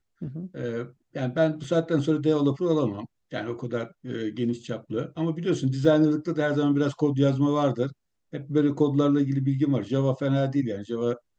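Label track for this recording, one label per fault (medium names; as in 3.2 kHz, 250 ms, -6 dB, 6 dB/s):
1.640000	1.640000	dropout 2.4 ms
5.850000	5.850000	dropout 2.2 ms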